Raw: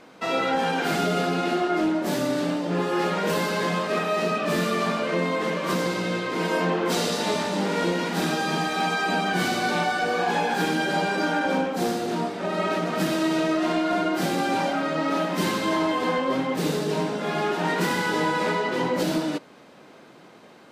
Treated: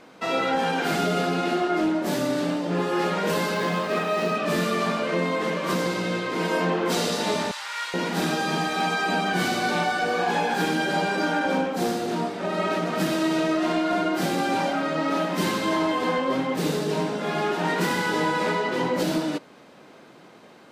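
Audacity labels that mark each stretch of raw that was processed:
3.540000	4.370000	median filter over 5 samples
7.510000	7.940000	high-pass 1.1 kHz 24 dB/octave

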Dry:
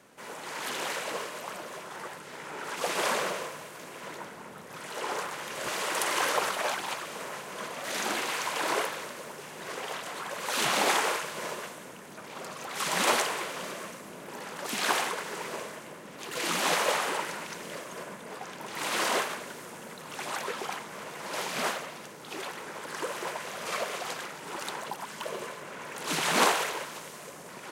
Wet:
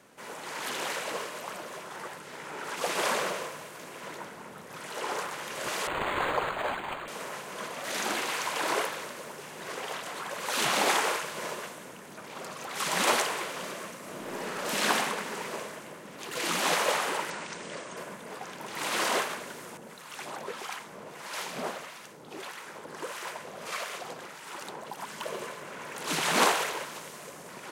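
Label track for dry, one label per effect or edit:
5.870000	7.080000	decimation joined by straight lines rate divided by 8×
13.970000	14.790000	reverb throw, RT60 2.4 s, DRR -4 dB
17.300000	17.970000	steep low-pass 9.3 kHz 96 dB/octave
19.770000	24.970000	harmonic tremolo 1.6 Hz, crossover 890 Hz

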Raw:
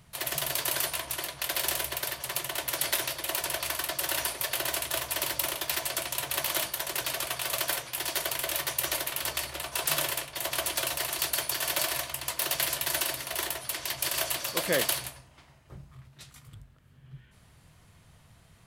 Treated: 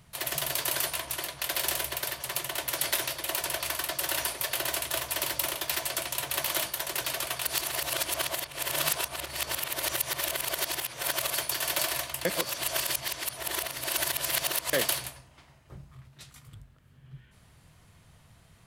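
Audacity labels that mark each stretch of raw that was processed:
7.460000	11.340000	reverse
12.250000	14.730000	reverse

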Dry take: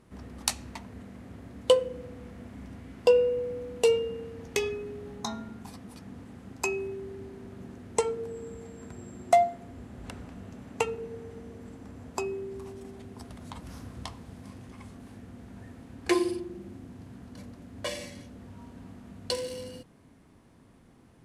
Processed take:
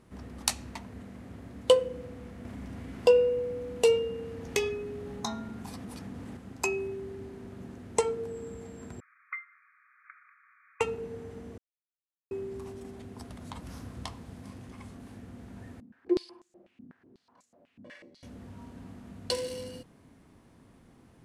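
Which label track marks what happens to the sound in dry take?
2.450000	6.370000	upward compressor, threshold -34 dBFS
9.000000	10.810000	brick-wall FIR band-pass 1.1–2.5 kHz
11.580000	12.310000	mute
15.800000	18.230000	step-sequenced band-pass 8.1 Hz 220–7200 Hz

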